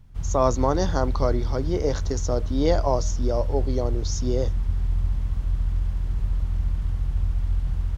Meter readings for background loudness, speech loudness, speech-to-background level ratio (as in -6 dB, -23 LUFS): -28.0 LUFS, -26.5 LUFS, 1.5 dB